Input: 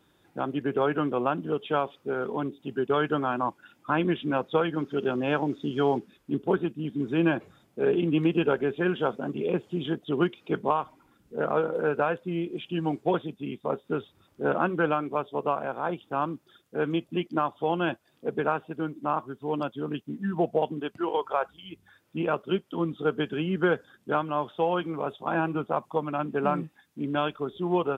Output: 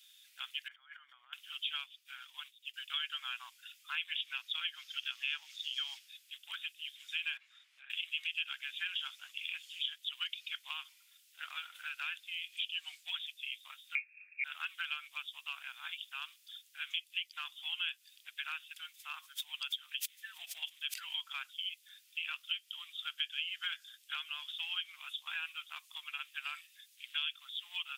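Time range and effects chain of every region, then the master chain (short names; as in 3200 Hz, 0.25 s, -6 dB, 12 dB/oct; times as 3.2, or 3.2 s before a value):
0.68–1.33 negative-ratio compressor -32 dBFS, ratio -0.5 + polynomial smoothing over 41 samples
1.84–2.74 notch 530 Hz, Q 5.6 + comb 6.7 ms, depth 42% + upward expander, over -47 dBFS
7.37–7.9 band-pass 640 Hz, Q 0.51 + three-band squash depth 100%
13.95–14.44 inverted band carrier 2600 Hz + comb 1.2 ms, depth 37%
18.76–21.22 notch 2900 Hz, Q 27 + backwards sustainer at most 130 dB/s
whole clip: inverse Chebyshev high-pass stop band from 460 Hz, stop band 80 dB; compressor 2.5:1, threshold -47 dBFS; gain +11.5 dB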